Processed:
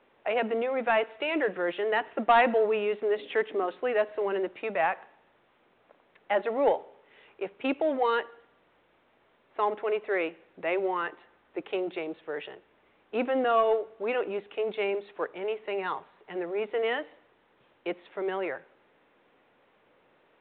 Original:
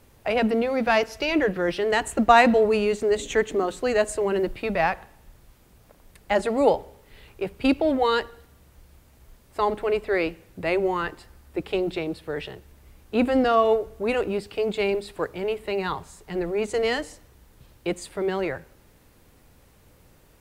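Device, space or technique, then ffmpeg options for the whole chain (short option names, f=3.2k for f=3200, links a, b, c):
telephone: -af "highpass=380,lowpass=3k,asoftclip=type=tanh:threshold=-10.5dB,volume=-2.5dB" -ar 8000 -c:a pcm_mulaw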